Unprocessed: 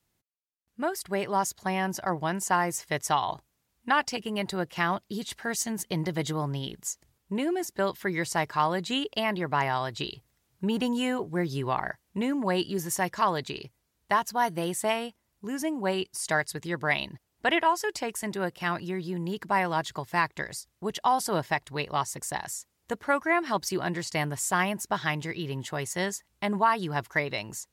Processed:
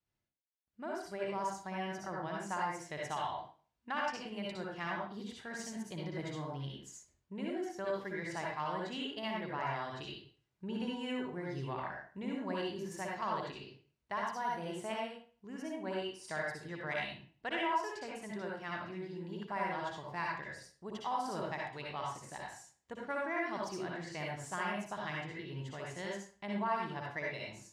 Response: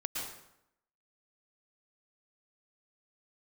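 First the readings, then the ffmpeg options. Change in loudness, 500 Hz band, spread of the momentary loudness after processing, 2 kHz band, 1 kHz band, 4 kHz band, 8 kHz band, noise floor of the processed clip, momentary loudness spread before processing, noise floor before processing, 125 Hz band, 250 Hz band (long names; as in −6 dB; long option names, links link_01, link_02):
−10.5 dB, −9.5 dB, 9 LU, −10.0 dB, −10.0 dB, −11.0 dB, −17.5 dB, −82 dBFS, 8 LU, −76 dBFS, −10.5 dB, −10.0 dB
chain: -filter_complex "[0:a]adynamicsmooth=sensitivity=1:basefreq=5900[link_01];[1:a]atrim=start_sample=2205,asetrate=83790,aresample=44100[link_02];[link_01][link_02]afir=irnorm=-1:irlink=0,volume=-7dB"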